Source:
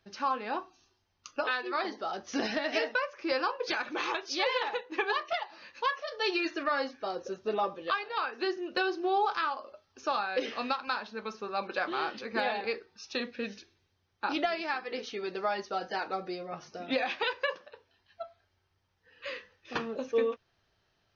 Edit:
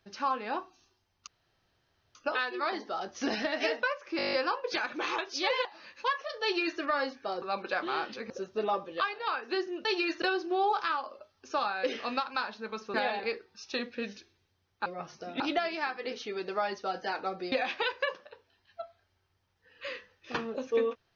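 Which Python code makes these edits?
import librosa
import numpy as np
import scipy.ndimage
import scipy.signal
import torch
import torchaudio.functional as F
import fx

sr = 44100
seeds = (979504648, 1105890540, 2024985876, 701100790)

y = fx.edit(x, sr, fx.insert_room_tone(at_s=1.27, length_s=0.88),
    fx.stutter(start_s=3.29, slice_s=0.02, count=9),
    fx.cut(start_s=4.61, length_s=0.82),
    fx.duplicate(start_s=6.21, length_s=0.37, to_s=8.75),
    fx.move(start_s=11.47, length_s=0.88, to_s=7.2),
    fx.move(start_s=16.39, length_s=0.54, to_s=14.27), tone=tone)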